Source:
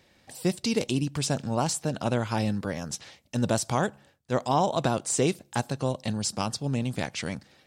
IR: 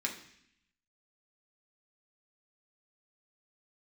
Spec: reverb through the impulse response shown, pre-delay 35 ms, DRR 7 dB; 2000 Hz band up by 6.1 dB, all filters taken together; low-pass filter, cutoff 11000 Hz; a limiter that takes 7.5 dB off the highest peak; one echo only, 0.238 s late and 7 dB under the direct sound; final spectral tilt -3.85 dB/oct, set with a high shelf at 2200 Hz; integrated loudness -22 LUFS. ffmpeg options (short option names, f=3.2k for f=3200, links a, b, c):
-filter_complex "[0:a]lowpass=11k,equalizer=f=2k:t=o:g=5,highshelf=f=2.2k:g=5.5,alimiter=limit=-15.5dB:level=0:latency=1,aecho=1:1:238:0.447,asplit=2[a][b];[1:a]atrim=start_sample=2205,adelay=35[c];[b][c]afir=irnorm=-1:irlink=0,volume=-10.5dB[d];[a][d]amix=inputs=2:normalize=0,volume=5dB"